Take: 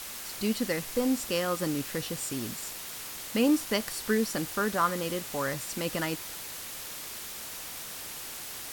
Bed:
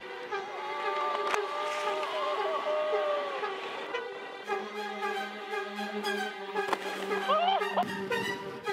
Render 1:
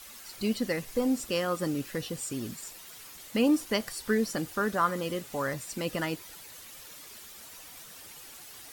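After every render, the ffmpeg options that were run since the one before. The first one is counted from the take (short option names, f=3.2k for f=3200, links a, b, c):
-af "afftdn=nr=10:nf=-41"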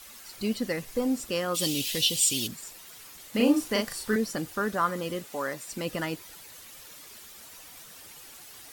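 -filter_complex "[0:a]asplit=3[a][b][c];[a]afade=t=out:st=1.54:d=0.02[d];[b]highshelf=f=2.2k:t=q:w=3:g=13,afade=t=in:st=1.54:d=0.02,afade=t=out:st=2.46:d=0.02[e];[c]afade=t=in:st=2.46:d=0.02[f];[d][e][f]amix=inputs=3:normalize=0,asettb=1/sr,asplit=3[g][h][i];[g]atrim=end=3.304[j];[h]atrim=start=3.3:end=4.16,asetpts=PTS-STARTPTS,afade=t=in:d=0.004:c=qsin,afade=t=out:st=0.856:d=0.004:c=qsin,asplit=2[k][l];[l]adelay=38,volume=-2dB[m];[k][m]amix=inputs=2:normalize=0,atrim=end_sample=37926[n];[i]atrim=start=4.156[o];[j][n]acrossfade=d=0.004:c1=hsin:c2=qsin[p];[p][o]acrossfade=d=0.004:c1=qsin:c2=hsin,asettb=1/sr,asplit=3[q][r][s];[q]atrim=end=5.254[t];[r]atrim=start=5.25:end=5.68,asetpts=PTS-STARTPTS,afade=t=in:d=0.004:c=qsin,afade=t=out:st=0.426:d=0.004:c=qsin,highpass=240[u];[s]atrim=start=5.676[v];[t][u]acrossfade=d=0.004:c1=hsin:c2=qsin[w];[w][v]acrossfade=d=0.004:c1=qsin:c2=hsin"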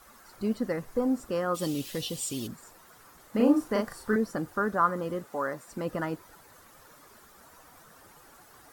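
-af "highshelf=f=1.9k:t=q:w=1.5:g=-10.5"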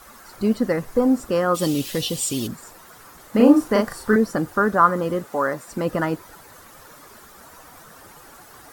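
-af "volume=9dB"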